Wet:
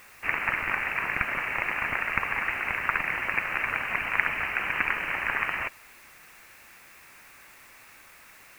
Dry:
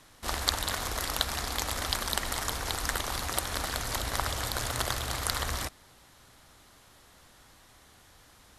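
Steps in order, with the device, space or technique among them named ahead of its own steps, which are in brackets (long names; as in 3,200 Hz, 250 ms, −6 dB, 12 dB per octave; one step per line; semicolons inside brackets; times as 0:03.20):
scrambled radio voice (band-pass filter 310–2,800 Hz; voice inversion scrambler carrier 3,000 Hz; white noise bed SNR 25 dB)
level +8 dB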